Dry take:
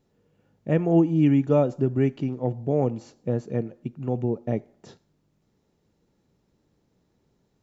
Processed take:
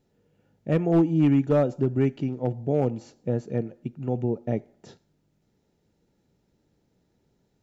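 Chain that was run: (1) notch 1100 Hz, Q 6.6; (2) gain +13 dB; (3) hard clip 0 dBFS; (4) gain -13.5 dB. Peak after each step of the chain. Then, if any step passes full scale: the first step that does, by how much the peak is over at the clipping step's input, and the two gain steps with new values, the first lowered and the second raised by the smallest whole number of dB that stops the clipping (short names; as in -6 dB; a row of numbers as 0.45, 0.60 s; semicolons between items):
-8.5, +4.5, 0.0, -13.5 dBFS; step 2, 4.5 dB; step 2 +8 dB, step 4 -8.5 dB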